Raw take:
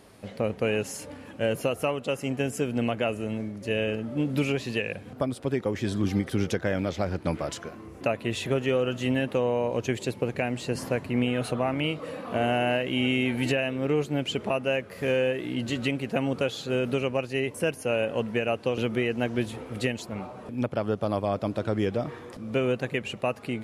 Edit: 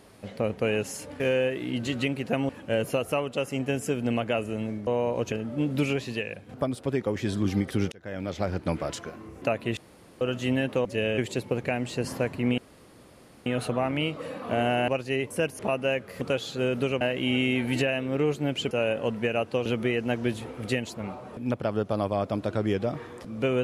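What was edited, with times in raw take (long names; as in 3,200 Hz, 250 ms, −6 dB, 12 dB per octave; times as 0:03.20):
0:03.58–0:03.91: swap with 0:09.44–0:09.89
0:04.48–0:05.08: fade out, to −6.5 dB
0:06.51–0:07.05: fade in linear
0:08.36–0:08.80: fill with room tone
0:11.29: splice in room tone 0.88 s
0:12.71–0:14.41: swap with 0:17.12–0:17.83
0:15.03–0:16.32: move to 0:01.20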